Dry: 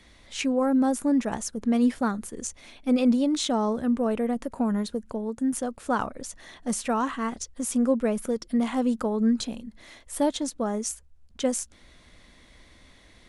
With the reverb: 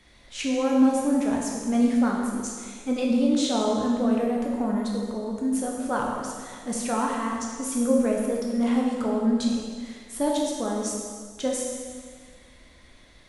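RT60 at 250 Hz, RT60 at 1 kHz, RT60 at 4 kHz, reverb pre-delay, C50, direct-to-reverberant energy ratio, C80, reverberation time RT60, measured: 1.7 s, 1.8 s, 1.7 s, 6 ms, 1.0 dB, -2.0 dB, 2.5 dB, 1.8 s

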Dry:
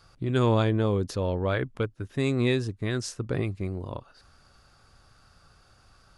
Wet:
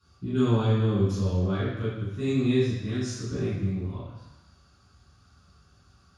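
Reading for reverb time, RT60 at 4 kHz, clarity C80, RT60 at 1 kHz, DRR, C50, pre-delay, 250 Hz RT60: 1.0 s, 1.1 s, 2.0 dB, 1.1 s, -10.0 dB, -1.5 dB, 3 ms, 1.0 s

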